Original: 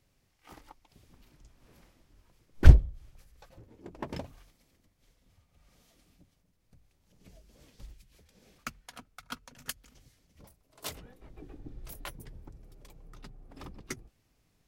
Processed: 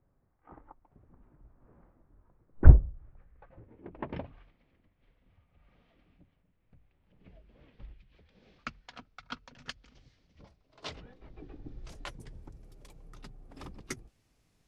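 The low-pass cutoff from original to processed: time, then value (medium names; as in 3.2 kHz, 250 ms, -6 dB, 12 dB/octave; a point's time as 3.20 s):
low-pass 24 dB/octave
2.85 s 1.4 kHz
4.10 s 2.9 kHz
7.86 s 2.9 kHz
8.79 s 5 kHz
11.53 s 5 kHz
12.52 s 12 kHz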